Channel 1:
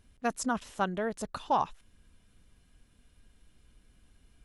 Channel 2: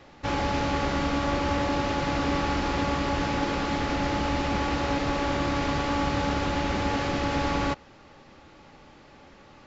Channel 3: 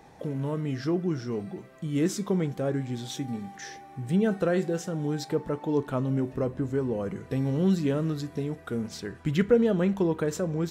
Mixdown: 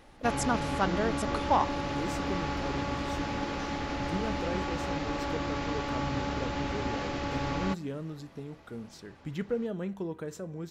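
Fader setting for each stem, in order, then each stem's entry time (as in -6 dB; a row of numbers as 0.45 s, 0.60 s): +1.5 dB, -6.5 dB, -10.5 dB; 0.00 s, 0.00 s, 0.00 s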